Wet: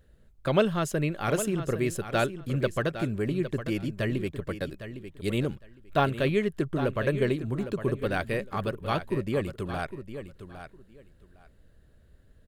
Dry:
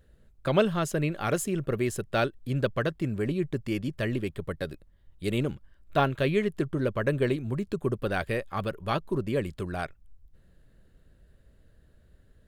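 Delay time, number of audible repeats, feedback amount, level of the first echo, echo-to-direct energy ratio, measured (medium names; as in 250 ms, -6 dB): 808 ms, 2, 18%, -11.0 dB, -11.0 dB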